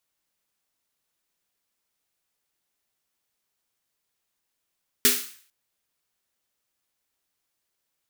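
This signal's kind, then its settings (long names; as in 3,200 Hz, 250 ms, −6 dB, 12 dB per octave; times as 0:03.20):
synth snare length 0.45 s, tones 250 Hz, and 410 Hz, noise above 1,400 Hz, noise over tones 10.5 dB, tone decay 0.33 s, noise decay 0.50 s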